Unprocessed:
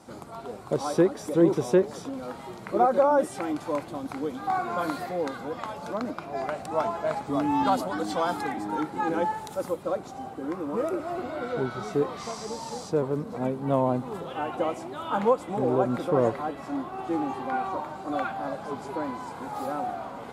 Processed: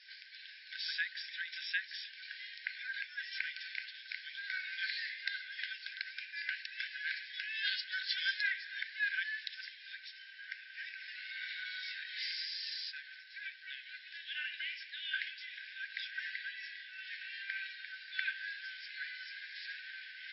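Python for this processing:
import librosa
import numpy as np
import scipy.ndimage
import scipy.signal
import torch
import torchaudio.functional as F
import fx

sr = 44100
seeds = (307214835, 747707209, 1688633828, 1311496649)

y = fx.brickwall_bandpass(x, sr, low_hz=1500.0, high_hz=5500.0)
y = y * librosa.db_to_amplitude(6.0)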